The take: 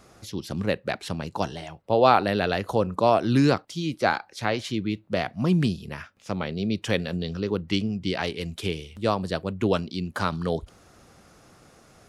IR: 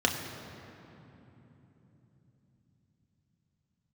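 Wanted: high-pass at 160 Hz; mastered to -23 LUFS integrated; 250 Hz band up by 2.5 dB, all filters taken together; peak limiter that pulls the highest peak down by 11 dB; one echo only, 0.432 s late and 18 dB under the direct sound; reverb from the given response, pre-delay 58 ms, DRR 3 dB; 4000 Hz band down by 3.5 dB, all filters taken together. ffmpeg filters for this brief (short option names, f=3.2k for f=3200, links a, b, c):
-filter_complex "[0:a]highpass=160,equalizer=f=250:t=o:g=4.5,equalizer=f=4k:t=o:g=-4.5,alimiter=limit=-14.5dB:level=0:latency=1,aecho=1:1:432:0.126,asplit=2[a][b];[1:a]atrim=start_sample=2205,adelay=58[c];[b][c]afir=irnorm=-1:irlink=0,volume=-14.5dB[d];[a][d]amix=inputs=2:normalize=0,volume=2dB"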